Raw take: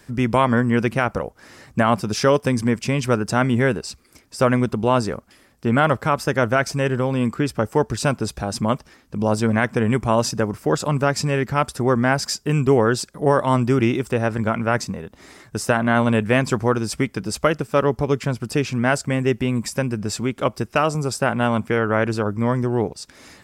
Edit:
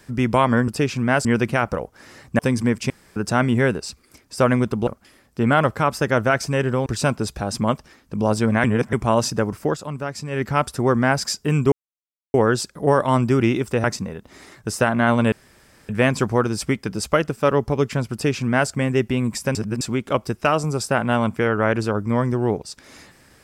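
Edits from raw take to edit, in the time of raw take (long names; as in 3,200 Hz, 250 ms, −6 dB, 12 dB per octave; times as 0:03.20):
0:01.82–0:02.40: remove
0:02.91–0:03.17: fill with room tone
0:04.88–0:05.13: remove
0:07.12–0:07.87: remove
0:09.65–0:09.94: reverse
0:10.66–0:11.44: duck −9 dB, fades 0.13 s
0:12.73: splice in silence 0.62 s
0:14.23–0:14.72: remove
0:16.20: splice in room tone 0.57 s
0:18.44–0:19.01: duplicate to 0:00.68
0:19.86–0:20.12: reverse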